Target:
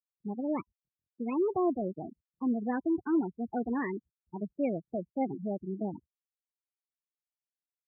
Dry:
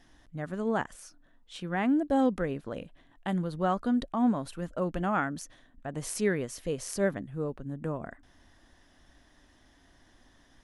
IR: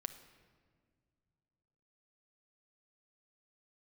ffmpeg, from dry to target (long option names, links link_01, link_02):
-filter_complex "[0:a]asplit=2[link_01][link_02];[link_02]aeval=exprs='(mod(15*val(0)+1,2)-1)/15':channel_layout=same,volume=-11dB[link_03];[link_01][link_03]amix=inputs=2:normalize=0,lowshelf=frequency=360:gain=11.5,asetrate=59535,aresample=44100,afftfilt=real='re*gte(hypot(re,im),0.126)':imag='im*gte(hypot(re,im),0.126)':win_size=1024:overlap=0.75,highpass=frequency=99:width=0.5412,highpass=frequency=99:width=1.3066,bandreject=frequency=1000:width=26,volume=-9dB"